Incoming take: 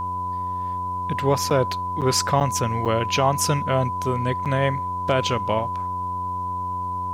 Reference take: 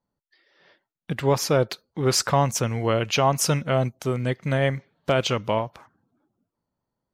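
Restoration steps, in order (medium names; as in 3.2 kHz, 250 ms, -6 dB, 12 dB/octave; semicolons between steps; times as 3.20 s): de-hum 91.3 Hz, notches 11; band-stop 1 kHz, Q 30; interpolate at 1.50/2.01/2.40/2.85/4.45 s, 7.5 ms; expander -19 dBFS, range -21 dB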